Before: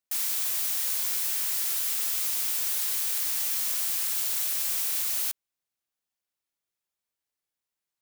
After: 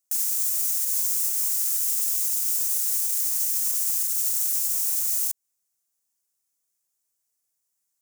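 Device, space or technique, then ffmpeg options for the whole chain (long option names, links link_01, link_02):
over-bright horn tweeter: -af "highshelf=frequency=4900:width_type=q:width=1.5:gain=11,alimiter=limit=-14.5dB:level=0:latency=1:release=169"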